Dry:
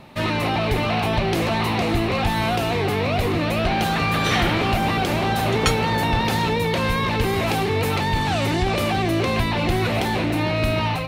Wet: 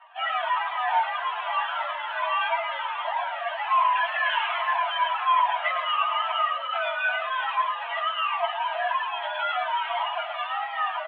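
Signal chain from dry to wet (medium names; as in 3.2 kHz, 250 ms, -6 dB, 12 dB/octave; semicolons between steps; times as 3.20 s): frequency axis rescaled in octaves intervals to 124%; comb 3.1 ms, depth 54%; wow and flutter 67 cents; Chebyshev band-pass 660–3200 Hz, order 5; distance through air 90 m; delay 108 ms -6 dB; Shepard-style flanger falling 1.3 Hz; trim +6 dB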